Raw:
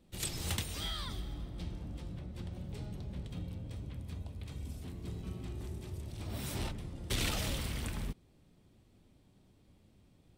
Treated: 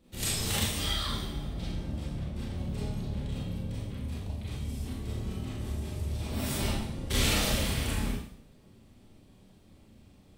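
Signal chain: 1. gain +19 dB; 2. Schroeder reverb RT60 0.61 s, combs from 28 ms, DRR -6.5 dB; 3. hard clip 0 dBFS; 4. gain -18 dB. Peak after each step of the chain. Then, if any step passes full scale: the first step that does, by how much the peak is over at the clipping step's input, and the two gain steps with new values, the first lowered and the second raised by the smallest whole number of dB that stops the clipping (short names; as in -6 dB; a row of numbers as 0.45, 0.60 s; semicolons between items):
-1.0, +5.5, 0.0, -18.0 dBFS; step 2, 5.5 dB; step 1 +13 dB, step 4 -12 dB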